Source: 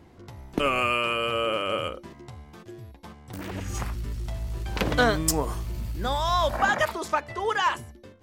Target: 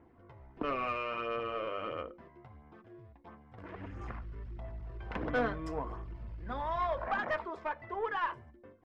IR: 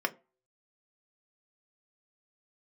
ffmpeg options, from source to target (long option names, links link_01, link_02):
-filter_complex "[0:a]lowpass=1900,atempo=0.93,flanger=delay=0.1:depth=1.9:regen=-34:speed=1.5:shape=sinusoidal,aeval=exprs='(tanh(10*val(0)+0.25)-tanh(0.25))/10':channel_layout=same,asplit=2[link_01][link_02];[1:a]atrim=start_sample=2205[link_03];[link_02][link_03]afir=irnorm=-1:irlink=0,volume=-8.5dB[link_04];[link_01][link_04]amix=inputs=2:normalize=0,volume=-8.5dB"